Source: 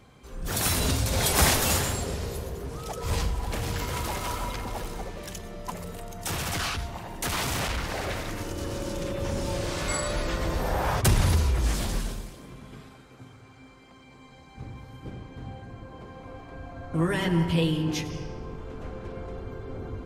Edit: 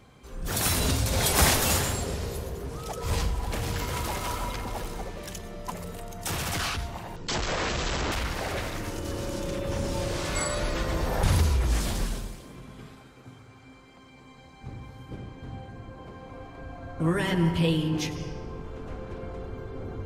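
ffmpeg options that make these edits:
ffmpeg -i in.wav -filter_complex "[0:a]asplit=4[link_01][link_02][link_03][link_04];[link_01]atrim=end=7.164[link_05];[link_02]atrim=start=7.16:end=7.65,asetpts=PTS-STARTPTS,asetrate=22491,aresample=44100[link_06];[link_03]atrim=start=7.646:end=10.762[link_07];[link_04]atrim=start=11.168[link_08];[link_05][link_06]acrossfade=duration=0.004:curve1=hsin:curve2=hsin[link_09];[link_09][link_07]acrossfade=duration=0.004:curve1=hsin:curve2=hsin[link_10];[link_10][link_08]acrossfade=duration=0.004:curve1=hsin:curve2=hsin" out.wav

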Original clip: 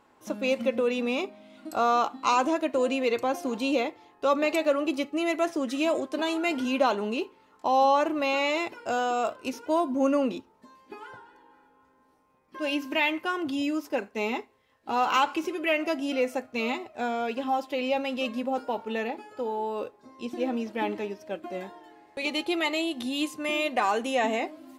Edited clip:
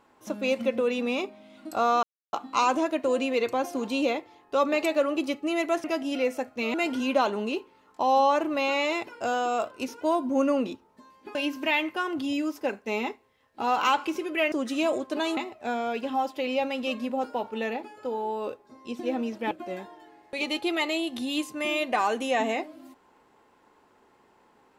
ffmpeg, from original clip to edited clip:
ffmpeg -i in.wav -filter_complex "[0:a]asplit=8[link_01][link_02][link_03][link_04][link_05][link_06][link_07][link_08];[link_01]atrim=end=2.03,asetpts=PTS-STARTPTS,afade=type=out:start_time=2.026:duration=0.004:curve=hsin,apad=pad_dur=0.3[link_09];[link_02]atrim=start=2.03:end=5.542,asetpts=PTS-STARTPTS,afade=type=in:duration=0.004:curve=hsin[link_10];[link_03]atrim=start=15.808:end=16.712[link_11];[link_04]atrim=start=6.388:end=11.002[link_12];[link_05]atrim=start=12.638:end=15.812[link_13];[link_06]atrim=start=5.538:end=6.392[link_14];[link_07]atrim=start=16.708:end=20.852[link_15];[link_08]atrim=start=21.348[link_16];[link_09][link_10]concat=n=2:v=0:a=1[link_17];[link_17][link_11]acrossfade=duration=0.004:curve1=hsin:curve2=hsin[link_18];[link_18][link_12]acrossfade=duration=0.004:curve1=hsin:curve2=hsin[link_19];[link_19][link_13]acrossfade=duration=0.004:curve1=hsin:curve2=hsin[link_20];[link_20][link_14]acrossfade=duration=0.004:curve1=hsin:curve2=hsin[link_21];[link_21][link_15]acrossfade=duration=0.004:curve1=hsin:curve2=hsin[link_22];[link_22][link_16]acrossfade=duration=0.004:curve1=hsin:curve2=hsin" out.wav

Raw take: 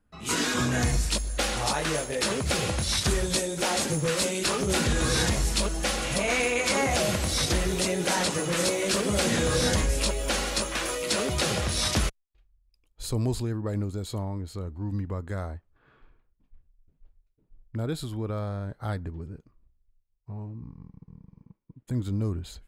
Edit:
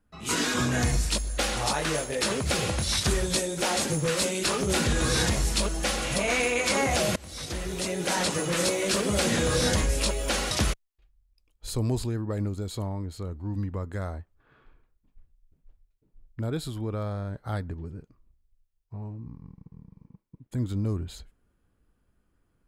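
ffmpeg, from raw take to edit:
ffmpeg -i in.wav -filter_complex "[0:a]asplit=3[link_01][link_02][link_03];[link_01]atrim=end=7.16,asetpts=PTS-STARTPTS,afade=type=out:start_time=7.156:duration=0.004:curve=hsin:silence=0.0841395[link_04];[link_02]atrim=start=7.16:end=10.512,asetpts=PTS-STARTPTS,afade=type=in:duration=1.13:silence=0.0841395[link_05];[link_03]atrim=start=11.868[link_06];[link_04][link_05]concat=n=2:v=0:a=1[link_07];[link_07][link_06]acrossfade=duration=0.004:curve1=hsin:curve2=hsin" out.wav

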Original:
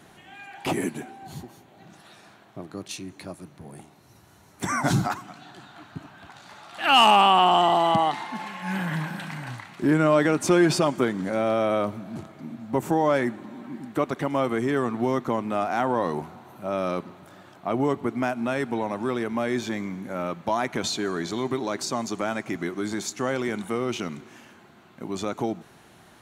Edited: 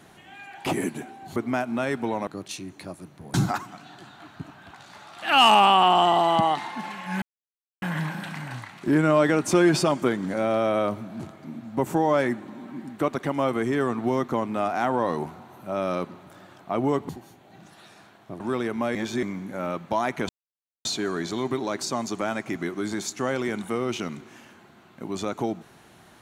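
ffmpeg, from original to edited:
ffmpeg -i in.wav -filter_complex "[0:a]asplit=10[link_01][link_02][link_03][link_04][link_05][link_06][link_07][link_08][link_09][link_10];[link_01]atrim=end=1.362[link_11];[link_02]atrim=start=18.048:end=18.962[link_12];[link_03]atrim=start=2.668:end=3.742[link_13];[link_04]atrim=start=4.898:end=8.78,asetpts=PTS-STARTPTS,afade=type=out:start_time=3.878:duration=0.004:curve=hsin,apad=pad_dur=0.6[link_14];[link_05]atrim=start=8.78:end=18.052,asetpts=PTS-STARTPTS,afade=type=in:duration=0.004:curve=hsin[link_15];[link_06]atrim=start=1.358:end=2.672[link_16];[link_07]atrim=start=18.958:end=19.512[link_17];[link_08]atrim=start=19.508:end=19.792,asetpts=PTS-STARTPTS,areverse[link_18];[link_09]atrim=start=19.788:end=20.85,asetpts=PTS-STARTPTS,afade=type=out:start_time=1.058:duration=0.004:curve=hsin,apad=pad_dur=0.56[link_19];[link_10]atrim=start=20.85,asetpts=PTS-STARTPTS,afade=type=in:duration=0.004:curve=hsin[link_20];[link_11][link_12]acrossfade=duration=0.004:curve1=hsin:curve2=hsin[link_21];[link_21][link_13]acrossfade=duration=0.004:curve1=hsin:curve2=hsin[link_22];[link_14][link_15]concat=n=2:v=0:a=1[link_23];[link_22][link_23]acrossfade=duration=0.004:curve1=hsin:curve2=hsin[link_24];[link_24][link_16]acrossfade=duration=0.004:curve1=hsin:curve2=hsin[link_25];[link_25][link_17]acrossfade=duration=0.004:curve1=hsin:curve2=hsin[link_26];[link_26][link_18]acrossfade=duration=0.004:curve1=hsin:curve2=hsin[link_27];[link_19][link_20]concat=n=2:v=0:a=1[link_28];[link_27][link_28]acrossfade=duration=0.004:curve1=hsin:curve2=hsin" out.wav

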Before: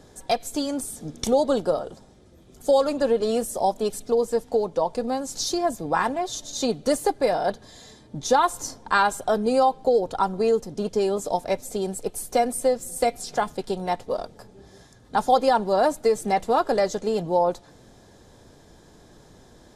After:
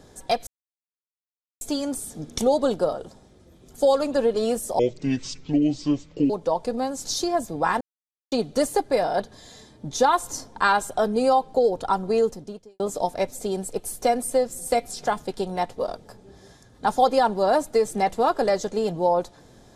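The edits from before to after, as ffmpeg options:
ffmpeg -i in.wav -filter_complex "[0:a]asplit=7[link_01][link_02][link_03][link_04][link_05][link_06][link_07];[link_01]atrim=end=0.47,asetpts=PTS-STARTPTS,afade=type=out:start_time=0.466:duration=0.004:curve=hsin,apad=pad_dur=1.14[link_08];[link_02]atrim=start=0.47:end=3.654,asetpts=PTS-STARTPTS,afade=type=in:duration=0.004:curve=hsin[link_09];[link_03]atrim=start=3.65:end=4.6,asetpts=PTS-STARTPTS,asetrate=27783,aresample=44100[link_10];[link_04]atrim=start=4.596:end=6.11,asetpts=PTS-STARTPTS,afade=type=out:start_time=1.51:duration=0.004:curve=hsin[link_11];[link_05]atrim=start=6.11:end=6.62,asetpts=PTS-STARTPTS,volume=0[link_12];[link_06]atrim=start=6.62:end=11.1,asetpts=PTS-STARTPTS,afade=type=in:duration=0.004:curve=hsin,afade=type=out:start_time=4:duration=0.48:curve=qua[link_13];[link_07]atrim=start=11.1,asetpts=PTS-STARTPTS,afade=type=in:duration=0.004:curve=hsin[link_14];[link_08][link_09]concat=n=2:v=0:a=1[link_15];[link_15][link_10]acrossfade=duration=0.004:curve1=hsin:curve2=hsin[link_16];[link_11][link_12][link_13][link_14]concat=n=4:v=0:a=1[link_17];[link_16][link_17]acrossfade=duration=0.004:curve1=hsin:curve2=hsin" out.wav

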